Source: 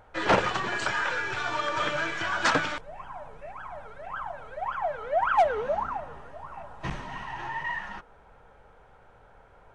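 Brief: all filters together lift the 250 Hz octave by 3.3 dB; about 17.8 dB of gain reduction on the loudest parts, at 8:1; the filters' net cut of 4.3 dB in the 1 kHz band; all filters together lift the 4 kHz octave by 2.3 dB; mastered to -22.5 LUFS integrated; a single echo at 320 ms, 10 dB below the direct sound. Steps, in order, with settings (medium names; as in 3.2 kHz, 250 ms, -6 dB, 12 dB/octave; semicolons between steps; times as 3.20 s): peaking EQ 250 Hz +5 dB; peaking EQ 1 kHz -6.5 dB; peaking EQ 4 kHz +3.5 dB; compression 8:1, threshold -37 dBFS; delay 320 ms -10 dB; trim +18.5 dB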